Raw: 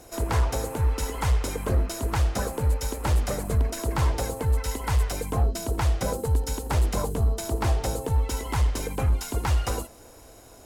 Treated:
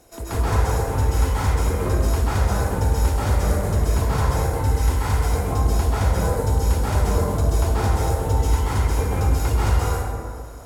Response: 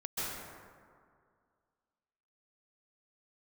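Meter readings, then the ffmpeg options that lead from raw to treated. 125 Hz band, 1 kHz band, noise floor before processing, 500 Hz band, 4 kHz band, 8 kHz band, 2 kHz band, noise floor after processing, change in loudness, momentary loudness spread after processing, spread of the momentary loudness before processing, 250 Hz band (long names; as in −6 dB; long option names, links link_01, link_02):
+6.0 dB, +6.0 dB, −49 dBFS, +5.0 dB, +1.5 dB, +2.0 dB, +4.5 dB, −33 dBFS, +5.0 dB, 1 LU, 2 LU, +5.5 dB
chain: -filter_complex "[1:a]atrim=start_sample=2205[link_01];[0:a][link_01]afir=irnorm=-1:irlink=0"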